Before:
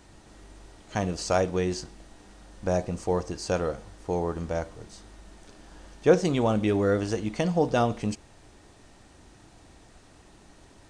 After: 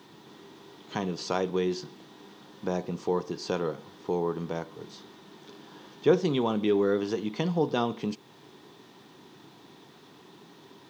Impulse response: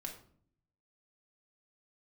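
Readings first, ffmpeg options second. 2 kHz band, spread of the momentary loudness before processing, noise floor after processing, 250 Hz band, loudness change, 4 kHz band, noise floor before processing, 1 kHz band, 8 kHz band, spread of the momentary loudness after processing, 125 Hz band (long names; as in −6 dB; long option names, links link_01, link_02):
−4.0 dB, 13 LU, −54 dBFS, −1.5 dB, −2.5 dB, +0.5 dB, −55 dBFS, −3.0 dB, can't be measured, 21 LU, −5.0 dB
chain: -filter_complex "[0:a]equalizer=frequency=250:width_type=o:width=0.77:gain=2.5,asplit=2[link_01][link_02];[link_02]acompressor=threshold=-35dB:ratio=6,volume=2dB[link_03];[link_01][link_03]amix=inputs=2:normalize=0,highpass=frequency=140:width=0.5412,highpass=frequency=140:width=1.3066,equalizer=frequency=150:width_type=q:width=4:gain=6,equalizer=frequency=400:width_type=q:width=4:gain=8,equalizer=frequency=610:width_type=q:width=4:gain=-6,equalizer=frequency=1000:width_type=q:width=4:gain=7,equalizer=frequency=3500:width_type=q:width=4:gain=9,lowpass=frequency=5900:width=0.5412,lowpass=frequency=5900:width=1.3066,acrusher=bits=9:mix=0:aa=0.000001,volume=-7dB"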